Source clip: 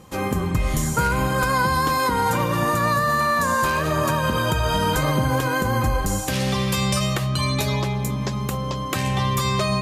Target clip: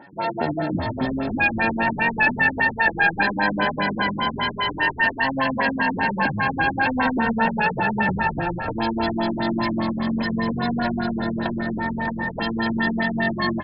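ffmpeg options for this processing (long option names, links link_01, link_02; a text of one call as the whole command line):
ffmpeg -i in.wav -filter_complex "[0:a]highpass=130,equalizer=frequency=240:width_type=o:width=0.4:gain=11,aecho=1:1:2.1:0.81,atempo=0.72,acontrast=81,asetrate=76340,aresample=44100,atempo=0.577676,aexciter=amount=1.2:drive=7.5:freq=5600,asplit=2[link_01][link_02];[link_02]asplit=8[link_03][link_04][link_05][link_06][link_07][link_08][link_09][link_10];[link_03]adelay=278,afreqshift=-45,volume=-9dB[link_11];[link_04]adelay=556,afreqshift=-90,volume=-12.9dB[link_12];[link_05]adelay=834,afreqshift=-135,volume=-16.8dB[link_13];[link_06]adelay=1112,afreqshift=-180,volume=-20.6dB[link_14];[link_07]adelay=1390,afreqshift=-225,volume=-24.5dB[link_15];[link_08]adelay=1668,afreqshift=-270,volume=-28.4dB[link_16];[link_09]adelay=1946,afreqshift=-315,volume=-32.3dB[link_17];[link_10]adelay=2224,afreqshift=-360,volume=-36.1dB[link_18];[link_11][link_12][link_13][link_14][link_15][link_16][link_17][link_18]amix=inputs=8:normalize=0[link_19];[link_01][link_19]amix=inputs=2:normalize=0,afftfilt=real='re*lt(b*sr/1024,300*pow(5400/300,0.5+0.5*sin(2*PI*5*pts/sr)))':imag='im*lt(b*sr/1024,300*pow(5400/300,0.5+0.5*sin(2*PI*5*pts/sr)))':win_size=1024:overlap=0.75,volume=-6.5dB" out.wav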